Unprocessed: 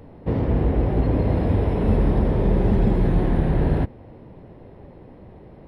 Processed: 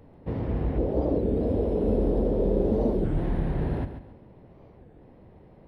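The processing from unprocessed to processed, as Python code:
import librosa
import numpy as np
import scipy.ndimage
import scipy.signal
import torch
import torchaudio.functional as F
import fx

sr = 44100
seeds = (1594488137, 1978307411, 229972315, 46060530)

y = fx.graphic_eq(x, sr, hz=(125, 250, 500, 1000, 2000), db=(-7, 5, 10, -5, -10), at=(0.78, 3.07))
y = fx.echo_feedback(y, sr, ms=139, feedback_pct=30, wet_db=-10.0)
y = fx.record_warp(y, sr, rpm=33.33, depth_cents=250.0)
y = F.gain(torch.from_numpy(y), -8.0).numpy()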